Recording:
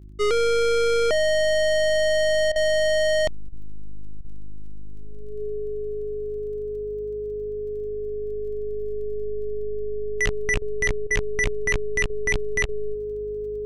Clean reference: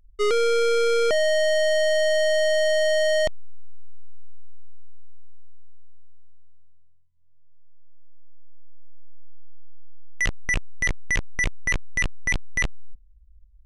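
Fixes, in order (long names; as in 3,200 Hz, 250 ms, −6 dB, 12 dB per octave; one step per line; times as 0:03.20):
click removal
hum removal 51.1 Hz, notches 7
notch filter 420 Hz, Q 30
repair the gap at 0:02.52/0:03.49/0:04.21/0:10.58/0:11.07/0:12.06/0:12.65, 37 ms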